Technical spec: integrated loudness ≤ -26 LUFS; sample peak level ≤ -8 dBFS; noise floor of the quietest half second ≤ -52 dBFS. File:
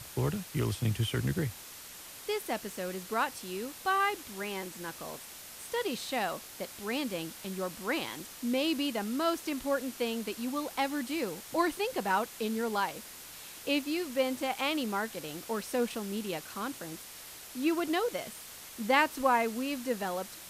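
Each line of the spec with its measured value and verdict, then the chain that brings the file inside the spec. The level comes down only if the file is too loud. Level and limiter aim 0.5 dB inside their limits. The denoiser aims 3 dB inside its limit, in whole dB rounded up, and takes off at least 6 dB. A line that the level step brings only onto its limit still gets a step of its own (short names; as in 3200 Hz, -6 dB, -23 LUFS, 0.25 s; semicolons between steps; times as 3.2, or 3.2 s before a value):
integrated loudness -33.0 LUFS: OK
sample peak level -12.0 dBFS: OK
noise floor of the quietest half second -48 dBFS: fail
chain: denoiser 7 dB, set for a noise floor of -48 dBFS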